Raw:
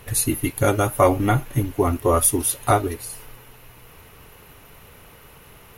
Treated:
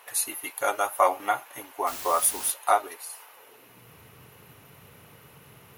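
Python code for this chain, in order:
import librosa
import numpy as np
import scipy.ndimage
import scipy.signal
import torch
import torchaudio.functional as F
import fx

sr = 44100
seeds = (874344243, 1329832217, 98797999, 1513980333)

y = fx.filter_sweep_highpass(x, sr, from_hz=810.0, to_hz=120.0, start_s=3.3, end_s=3.89, q=1.7)
y = fx.dmg_noise_colour(y, sr, seeds[0], colour='white', level_db=-33.0, at=(1.86, 2.5), fade=0.02)
y = y * librosa.db_to_amplitude(-5.0)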